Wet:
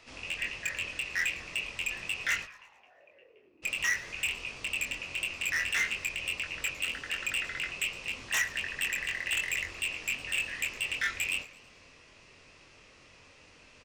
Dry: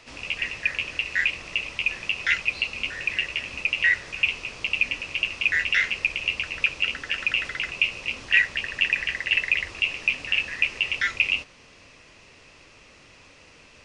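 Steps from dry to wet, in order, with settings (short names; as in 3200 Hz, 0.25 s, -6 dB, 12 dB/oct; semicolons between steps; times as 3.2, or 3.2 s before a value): 2.44–3.62 band-pass 1200 Hz -> 320 Hz, Q 8.2; wavefolder -17 dBFS; doubler 23 ms -5 dB; warbling echo 0.111 s, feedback 49%, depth 156 cents, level -19.5 dB; gain -6.5 dB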